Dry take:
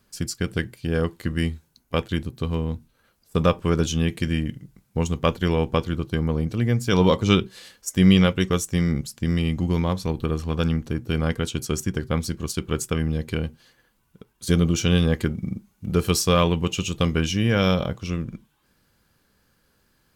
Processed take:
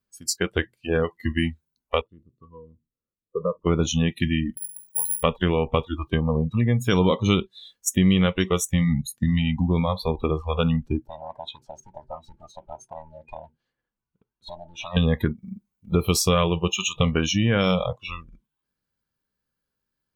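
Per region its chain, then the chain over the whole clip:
2.01–3.67 s: boxcar filter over 56 samples + bass shelf 200 Hz -6.5 dB
4.57–5.23 s: hum notches 60/120/180/240 Hz + compression 2:1, threshold -42 dBFS + careless resampling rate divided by 4×, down none, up zero stuff
11.07–14.97 s: low-pass 2 kHz 6 dB/octave + compression, threshold -27 dBFS + loudspeaker Doppler distortion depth 0.76 ms
whole clip: spectral noise reduction 28 dB; compression 2.5:1, threshold -28 dBFS; trim +7.5 dB

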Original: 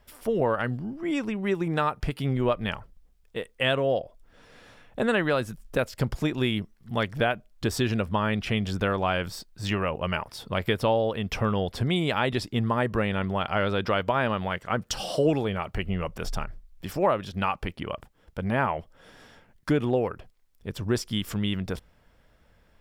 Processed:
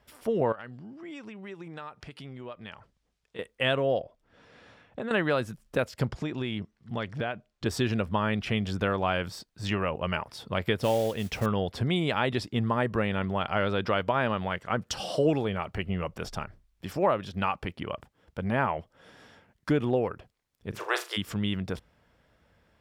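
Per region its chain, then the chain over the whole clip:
0.52–3.39 s: low-pass 7.3 kHz + tilt EQ +1.5 dB/octave + compression 2.5:1, threshold -42 dBFS
4.01–5.11 s: compression 10:1, threshold -28 dBFS + distance through air 53 m
6.06–7.66 s: low-pass 7.1 kHz + compression 3:1, threshold -26 dBFS
10.79–11.46 s: modulation noise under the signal 17 dB + peaking EQ 1.1 kHz -6 dB 0.69 oct
20.72–21.16 s: spectral peaks clipped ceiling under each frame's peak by 26 dB + rippled Chebyshev high-pass 330 Hz, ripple 3 dB + flutter echo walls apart 6.6 m, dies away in 0.25 s
whole clip: high-pass 63 Hz; treble shelf 9.9 kHz -8 dB; trim -1.5 dB

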